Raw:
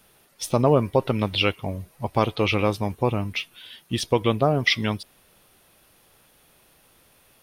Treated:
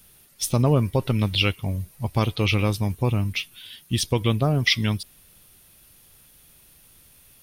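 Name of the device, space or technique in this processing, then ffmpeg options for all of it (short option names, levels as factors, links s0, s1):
smiley-face EQ: -af "lowshelf=f=160:g=7.5,equalizer=f=670:t=o:w=2.6:g=-7.5,highshelf=f=5800:g=7.5,volume=1.12"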